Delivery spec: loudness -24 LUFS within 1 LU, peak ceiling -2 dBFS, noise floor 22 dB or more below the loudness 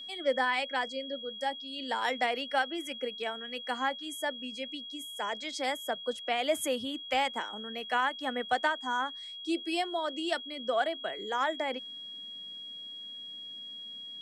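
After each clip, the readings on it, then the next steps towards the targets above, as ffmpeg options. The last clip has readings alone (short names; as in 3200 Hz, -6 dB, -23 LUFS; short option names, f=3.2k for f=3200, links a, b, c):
steady tone 3300 Hz; tone level -41 dBFS; loudness -33.0 LUFS; peak -16.5 dBFS; loudness target -24.0 LUFS
-> -af "bandreject=f=3.3k:w=30"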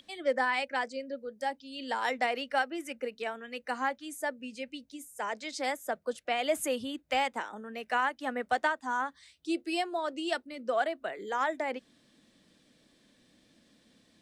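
steady tone none; loudness -33.0 LUFS; peak -16.0 dBFS; loudness target -24.0 LUFS
-> -af "volume=9dB"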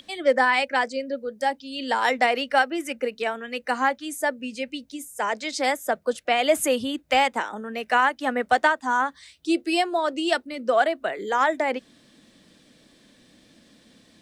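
loudness -24.0 LUFS; peak -7.0 dBFS; noise floor -58 dBFS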